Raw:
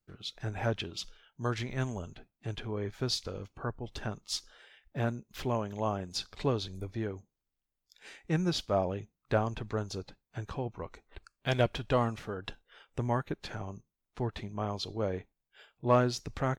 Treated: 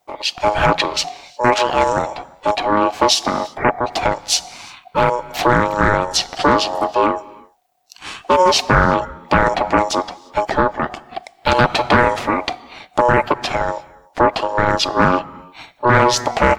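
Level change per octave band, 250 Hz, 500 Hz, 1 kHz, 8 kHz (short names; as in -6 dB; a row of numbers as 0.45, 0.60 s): +14.0, +16.0, +22.5, +20.5 dB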